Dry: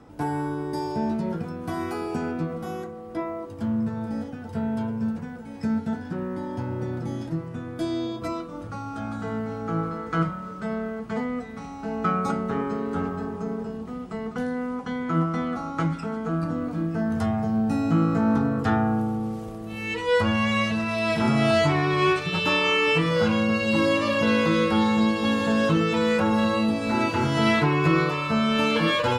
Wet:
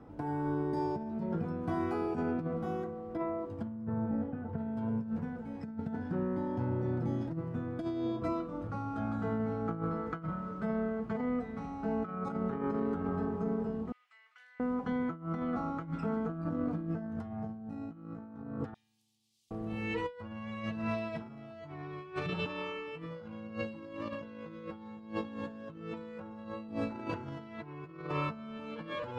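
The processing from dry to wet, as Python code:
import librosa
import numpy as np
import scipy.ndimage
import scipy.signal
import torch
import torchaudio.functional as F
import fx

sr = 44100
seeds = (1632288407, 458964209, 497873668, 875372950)

y = fx.lowpass(x, sr, hz=1900.0, slope=12, at=(3.85, 4.58))
y = fx.ladder_highpass(y, sr, hz=1800.0, resonance_pct=40, at=(13.92, 14.6))
y = fx.cheby2_highpass(y, sr, hz=1500.0, order=4, stop_db=50, at=(18.74, 19.51))
y = fx.lowpass(y, sr, hz=1200.0, slope=6)
y = fx.over_compress(y, sr, threshold_db=-29.0, ratio=-0.5)
y = y * librosa.db_to_amplitude(-6.5)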